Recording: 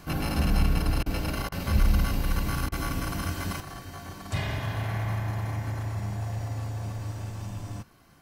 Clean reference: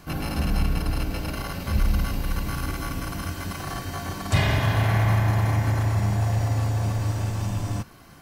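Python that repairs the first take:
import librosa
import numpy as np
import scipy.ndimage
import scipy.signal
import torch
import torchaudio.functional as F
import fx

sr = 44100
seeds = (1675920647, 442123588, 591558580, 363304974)

y = fx.fix_interpolate(x, sr, at_s=(1.03, 1.49, 2.69), length_ms=29.0)
y = fx.fix_level(y, sr, at_s=3.6, step_db=9.0)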